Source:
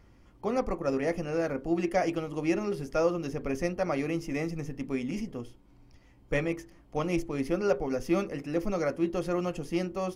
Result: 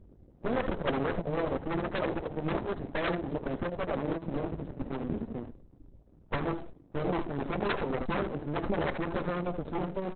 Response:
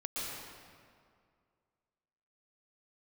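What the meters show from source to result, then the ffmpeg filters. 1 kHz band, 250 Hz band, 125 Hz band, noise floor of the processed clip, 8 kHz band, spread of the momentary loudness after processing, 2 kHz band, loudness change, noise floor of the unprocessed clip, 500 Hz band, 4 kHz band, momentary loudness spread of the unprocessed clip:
+1.0 dB, −3.5 dB, 0.0 dB, −58 dBFS, below −30 dB, 6 LU, 0.0 dB, −2.5 dB, −58 dBFS, −3.5 dB, +1.0 dB, 7 LU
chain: -filter_complex "[0:a]afftfilt=real='re*(1-between(b*sr/4096,640,8800))':imag='im*(1-between(b*sr/4096,640,8800))':win_size=4096:overlap=0.75,highshelf=frequency=5100:gain=4,acrossover=split=2900[link_01][link_02];[link_01]aeval=exprs='0.0501*(abs(mod(val(0)/0.0501+3,4)-2)-1)':channel_layout=same[link_03];[link_02]aeval=exprs='val(0)*sin(2*PI*76*n/s)':channel_layout=same[link_04];[link_03][link_04]amix=inputs=2:normalize=0,aecho=1:1:78:0.376,aeval=exprs='max(val(0),0)':channel_layout=same,aexciter=amount=15.7:drive=2.5:freq=9100,aeval=exprs='val(0)+0.000562*(sin(2*PI*50*n/s)+sin(2*PI*2*50*n/s)/2+sin(2*PI*3*50*n/s)/3+sin(2*PI*4*50*n/s)/4+sin(2*PI*5*50*n/s)/5)':channel_layout=same,aeval=exprs='0.106*(cos(1*acos(clip(val(0)/0.106,-1,1)))-cos(1*PI/2))+0.00422*(cos(2*acos(clip(val(0)/0.106,-1,1)))-cos(2*PI/2))+0.000841*(cos(5*acos(clip(val(0)/0.106,-1,1)))-cos(5*PI/2))+0.00376*(cos(8*acos(clip(val(0)/0.106,-1,1)))-cos(8*PI/2))':channel_layout=same,asplit=2[link_05][link_06];[link_06]adelay=13,volume=-12dB[link_07];[link_05][link_07]amix=inputs=2:normalize=0,volume=7.5dB" -ar 48000 -c:a libopus -b:a 6k

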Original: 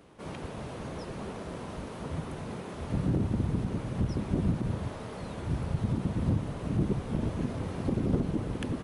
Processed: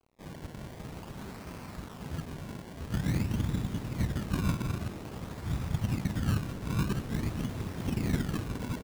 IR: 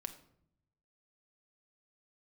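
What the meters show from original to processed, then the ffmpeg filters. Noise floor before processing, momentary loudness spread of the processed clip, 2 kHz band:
−41 dBFS, 12 LU, +3.0 dB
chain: -filter_complex "[0:a]equalizer=frequency=490:width=1.1:gain=-9.5,acrusher=bits=4:mode=log:mix=0:aa=0.000001,asplit=2[link_01][link_02];[link_02]aecho=0:1:1127:0.141[link_03];[link_01][link_03]amix=inputs=2:normalize=0,acrusher=samples=24:mix=1:aa=0.000001:lfo=1:lforange=24:lforate=0.49,aeval=exprs='sgn(val(0))*max(abs(val(0))-0.00168,0)':channel_layout=same,asplit=2[link_04][link_05];[link_05]asplit=6[link_06][link_07][link_08][link_09][link_10][link_11];[link_06]adelay=207,afreqshift=84,volume=-16.5dB[link_12];[link_07]adelay=414,afreqshift=168,volume=-20.5dB[link_13];[link_08]adelay=621,afreqshift=252,volume=-24.5dB[link_14];[link_09]adelay=828,afreqshift=336,volume=-28.5dB[link_15];[link_10]adelay=1035,afreqshift=420,volume=-32.6dB[link_16];[link_11]adelay=1242,afreqshift=504,volume=-36.6dB[link_17];[link_12][link_13][link_14][link_15][link_16][link_17]amix=inputs=6:normalize=0[link_18];[link_04][link_18]amix=inputs=2:normalize=0"

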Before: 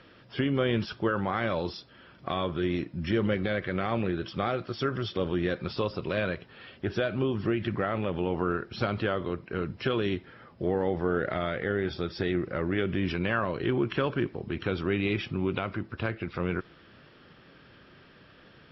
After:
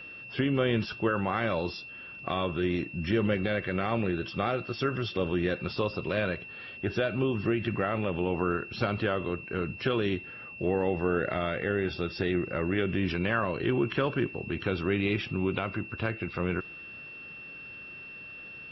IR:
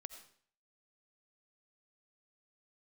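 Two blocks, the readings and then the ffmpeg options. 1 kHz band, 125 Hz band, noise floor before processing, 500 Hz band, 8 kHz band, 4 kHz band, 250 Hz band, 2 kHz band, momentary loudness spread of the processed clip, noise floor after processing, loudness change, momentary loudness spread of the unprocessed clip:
0.0 dB, 0.0 dB, −55 dBFS, 0.0 dB, can't be measured, 0.0 dB, 0.0 dB, +1.5 dB, 14 LU, −45 dBFS, 0.0 dB, 6 LU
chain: -af "aeval=exprs='val(0)+0.00794*sin(2*PI*2700*n/s)':channel_layout=same"

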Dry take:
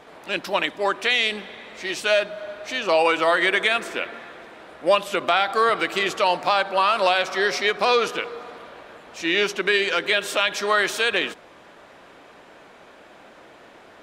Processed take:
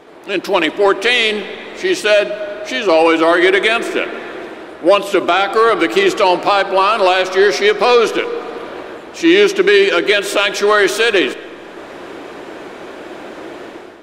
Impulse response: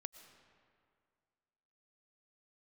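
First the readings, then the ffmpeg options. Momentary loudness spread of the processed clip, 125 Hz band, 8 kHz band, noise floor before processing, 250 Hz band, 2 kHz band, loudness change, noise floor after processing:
20 LU, +7.5 dB, +7.0 dB, −48 dBFS, +15.0 dB, +6.5 dB, +8.0 dB, −34 dBFS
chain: -filter_complex "[0:a]equalizer=frequency=350:width_type=o:width=0.69:gain=10.5,dynaudnorm=framelen=160:gausssize=5:maxgain=11.5dB,asoftclip=type=tanh:threshold=-2dB,asplit=2[link_01][link_02];[1:a]atrim=start_sample=2205[link_03];[link_02][link_03]afir=irnorm=-1:irlink=0,volume=2dB[link_04];[link_01][link_04]amix=inputs=2:normalize=0,volume=-2.5dB"

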